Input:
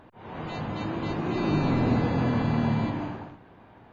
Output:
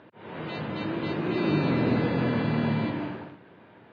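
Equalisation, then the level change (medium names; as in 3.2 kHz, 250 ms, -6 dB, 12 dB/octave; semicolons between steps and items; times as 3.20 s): cabinet simulation 160–4500 Hz, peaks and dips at 250 Hz -4 dB, 770 Hz -8 dB, 1.1 kHz -5 dB; +3.0 dB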